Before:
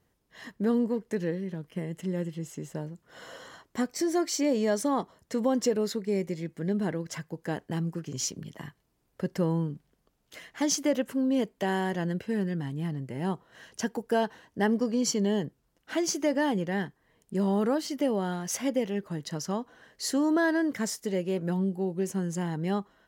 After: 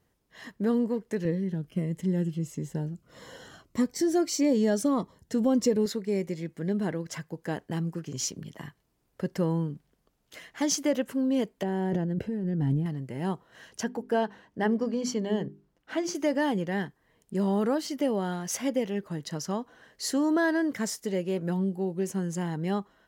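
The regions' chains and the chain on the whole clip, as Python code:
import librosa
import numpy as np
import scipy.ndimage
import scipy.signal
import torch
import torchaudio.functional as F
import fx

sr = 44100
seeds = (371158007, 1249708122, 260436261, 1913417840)

y = fx.chain(x, sr, fx.low_shelf(hz=230.0, db=8.5),
    fx.notch_cascade(direction='falling', hz=1.6), at=(1.25, 5.86))
y = fx.chain(y, sr, fx.tilt_shelf(db=8.0, hz=910.0),
    fx.notch(hz=1100.0, q=7.1),
    fx.over_compress(threshold_db=-28.0, ratio=-1.0), at=(11.63, 12.86))
y = fx.chain(y, sr, fx.high_shelf(hz=4700.0, db=-10.5),
    fx.hum_notches(base_hz=50, count=8), at=(13.83, 16.15))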